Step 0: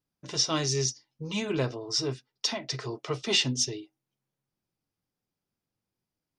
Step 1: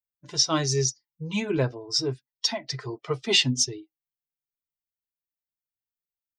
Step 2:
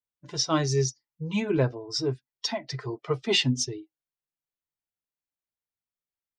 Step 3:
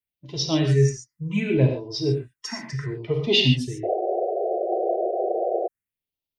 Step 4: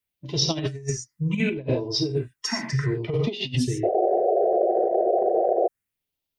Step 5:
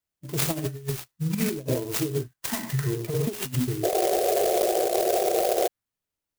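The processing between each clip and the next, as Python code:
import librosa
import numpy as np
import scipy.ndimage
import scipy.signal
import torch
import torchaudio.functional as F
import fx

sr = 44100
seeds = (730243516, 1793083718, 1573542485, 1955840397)

y1 = fx.bin_expand(x, sr, power=1.5)
y1 = F.gain(torch.from_numpy(y1), 5.5).numpy()
y2 = fx.high_shelf(y1, sr, hz=3100.0, db=-8.5)
y2 = F.gain(torch.from_numpy(y2), 1.0).numpy()
y3 = fx.rev_gated(y2, sr, seeds[0], gate_ms=160, shape='flat', drr_db=2.5)
y3 = fx.phaser_stages(y3, sr, stages=4, low_hz=590.0, high_hz=1500.0, hz=0.68, feedback_pct=25)
y3 = fx.spec_paint(y3, sr, seeds[1], shape='noise', start_s=3.83, length_s=1.85, low_hz=340.0, high_hz=780.0, level_db=-28.0)
y3 = F.gain(torch.from_numpy(y3), 3.5).numpy()
y4 = fx.over_compress(y3, sr, threshold_db=-25.0, ratio=-0.5)
y4 = F.gain(torch.from_numpy(y4), 2.5).numpy()
y5 = fx.clock_jitter(y4, sr, seeds[2], jitter_ms=0.092)
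y5 = F.gain(torch.from_numpy(y5), -2.0).numpy()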